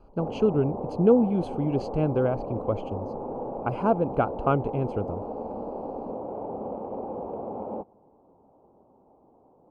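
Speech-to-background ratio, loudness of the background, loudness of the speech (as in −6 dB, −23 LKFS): 8.5 dB, −35.0 LKFS, −26.5 LKFS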